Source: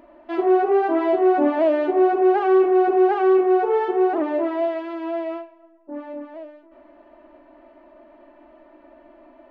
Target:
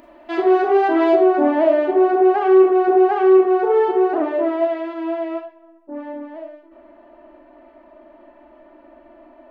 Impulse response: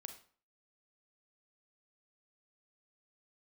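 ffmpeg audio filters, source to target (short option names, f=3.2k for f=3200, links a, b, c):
-filter_complex "[0:a]asetnsamples=n=441:p=0,asendcmd='1.16 highshelf g -2',highshelf=f=2.7k:g=11[a];[1:a]atrim=start_sample=2205,atrim=end_sample=6174[b];[a][b]afir=irnorm=-1:irlink=0,volume=7.5dB"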